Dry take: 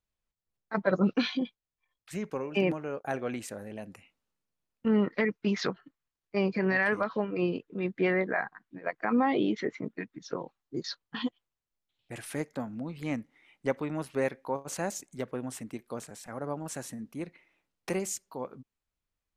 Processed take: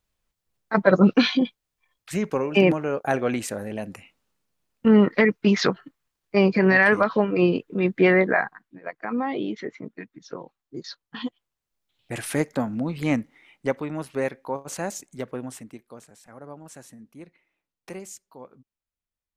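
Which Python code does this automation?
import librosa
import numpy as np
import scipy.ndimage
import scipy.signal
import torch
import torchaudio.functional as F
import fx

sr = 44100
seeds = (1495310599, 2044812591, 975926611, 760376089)

y = fx.gain(x, sr, db=fx.line((8.33, 9.5), (8.79, -1.0), (11.01, -1.0), (12.17, 10.0), (13.16, 10.0), (13.84, 3.0), (15.41, 3.0), (15.96, -6.0)))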